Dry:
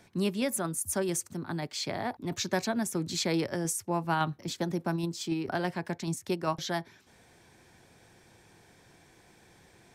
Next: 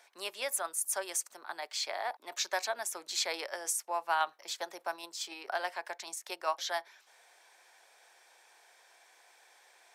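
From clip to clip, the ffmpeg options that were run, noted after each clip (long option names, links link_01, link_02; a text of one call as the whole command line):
ffmpeg -i in.wav -af "highpass=frequency=610:width=0.5412,highpass=frequency=610:width=1.3066" out.wav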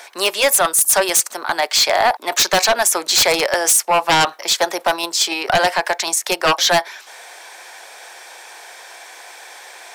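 ffmpeg -i in.wav -af "aeval=exprs='0.133*sin(PI/2*3.55*val(0)/0.133)':channel_layout=same,volume=8.5dB" out.wav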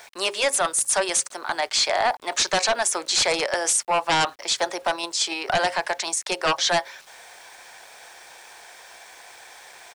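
ffmpeg -i in.wav -af "aresample=22050,aresample=44100,bandreject=frequency=135.1:width_type=h:width=4,bandreject=frequency=270.2:width_type=h:width=4,bandreject=frequency=405.3:width_type=h:width=4,bandreject=frequency=540.4:width_type=h:width=4,aeval=exprs='val(0)*gte(abs(val(0)),0.0075)':channel_layout=same,volume=-6.5dB" out.wav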